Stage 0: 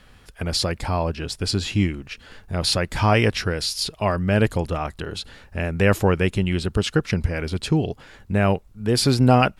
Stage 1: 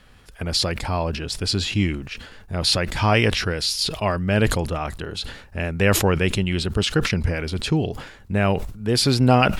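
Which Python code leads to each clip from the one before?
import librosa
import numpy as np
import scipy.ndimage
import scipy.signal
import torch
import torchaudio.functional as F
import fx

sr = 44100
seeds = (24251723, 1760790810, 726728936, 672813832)

y = fx.dynamic_eq(x, sr, hz=3400.0, q=0.86, threshold_db=-36.0, ratio=4.0, max_db=4)
y = fx.sustainer(y, sr, db_per_s=76.0)
y = y * 10.0 ** (-1.0 / 20.0)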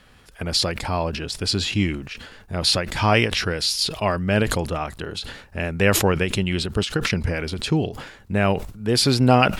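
y = fx.low_shelf(x, sr, hz=78.0, db=-6.5)
y = fx.end_taper(y, sr, db_per_s=150.0)
y = y * 10.0 ** (1.0 / 20.0)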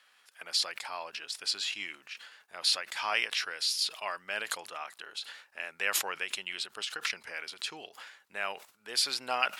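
y = scipy.signal.sosfilt(scipy.signal.butter(2, 1100.0, 'highpass', fs=sr, output='sos'), x)
y = y * 10.0 ** (-7.5 / 20.0)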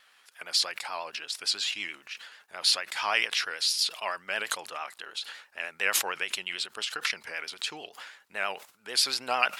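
y = fx.vibrato(x, sr, rate_hz=9.0, depth_cents=67.0)
y = y * 10.0 ** (3.5 / 20.0)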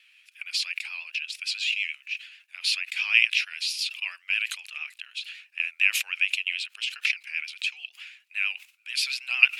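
y = fx.highpass_res(x, sr, hz=2500.0, q=7.4)
y = y * 10.0 ** (-5.5 / 20.0)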